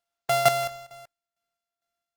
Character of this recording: a buzz of ramps at a fixed pitch in blocks of 64 samples; tremolo saw down 2.2 Hz, depth 80%; Opus

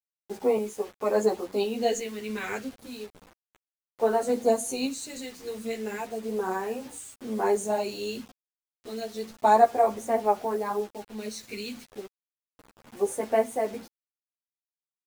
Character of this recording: phasing stages 2, 0.32 Hz, lowest notch 790–4000 Hz; random-step tremolo, depth 65%; a quantiser's noise floor 8-bit, dither none; a shimmering, thickened sound

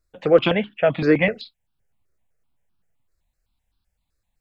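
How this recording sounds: notches that jump at a steady rate 7.8 Hz 840–2000 Hz

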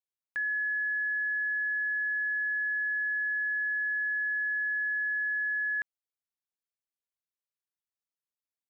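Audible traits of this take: noise floor -95 dBFS; spectral tilt -3.0 dB/oct

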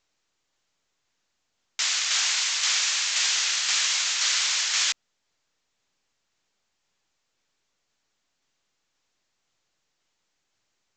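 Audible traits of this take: tremolo saw down 1.9 Hz, depth 40%; µ-law

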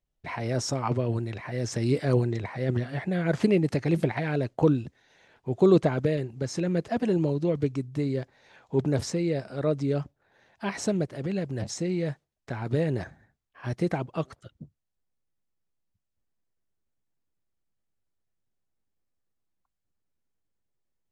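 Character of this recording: noise floor -82 dBFS; spectral tilt -7.0 dB/oct

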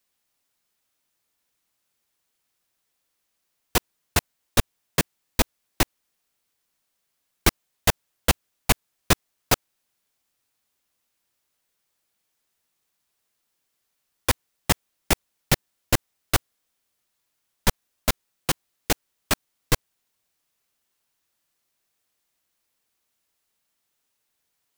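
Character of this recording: noise floor -77 dBFS; spectral tilt -3.0 dB/oct

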